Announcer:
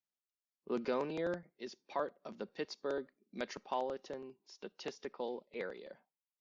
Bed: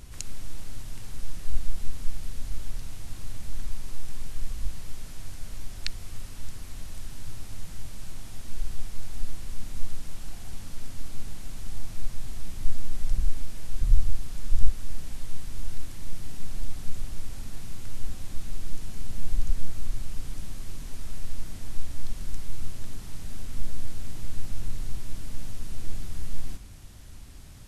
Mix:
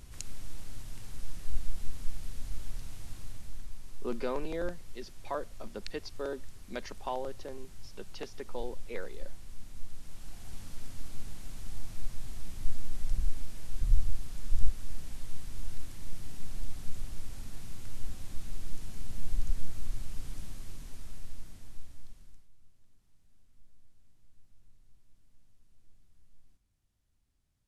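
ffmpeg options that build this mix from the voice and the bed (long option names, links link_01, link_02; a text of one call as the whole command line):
ffmpeg -i stem1.wav -i stem2.wav -filter_complex "[0:a]adelay=3350,volume=1dB[link_01];[1:a]volume=1dB,afade=type=out:start_time=3.06:duration=0.62:silence=0.501187,afade=type=in:start_time=9.9:duration=0.68:silence=0.501187,afade=type=out:start_time=20.38:duration=2.11:silence=0.0501187[link_02];[link_01][link_02]amix=inputs=2:normalize=0" out.wav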